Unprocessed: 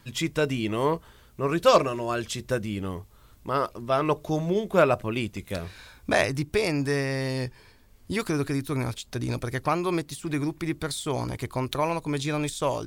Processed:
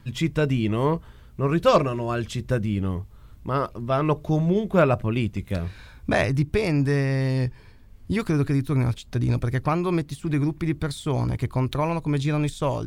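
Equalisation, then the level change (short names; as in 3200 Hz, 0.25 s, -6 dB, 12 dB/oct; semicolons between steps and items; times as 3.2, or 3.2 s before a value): tone controls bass +9 dB, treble -6 dB; 0.0 dB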